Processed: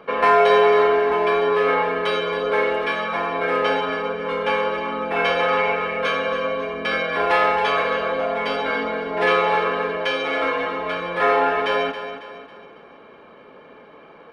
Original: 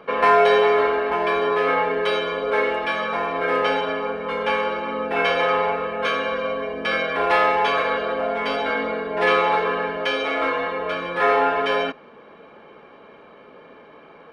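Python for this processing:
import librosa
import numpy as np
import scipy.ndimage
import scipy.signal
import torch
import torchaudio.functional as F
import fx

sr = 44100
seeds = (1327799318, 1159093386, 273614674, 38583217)

y = fx.peak_eq(x, sr, hz=2300.0, db=8.5, octaves=0.55, at=(5.57, 6.01))
y = fx.echo_feedback(y, sr, ms=274, feedback_pct=42, wet_db=-10.5)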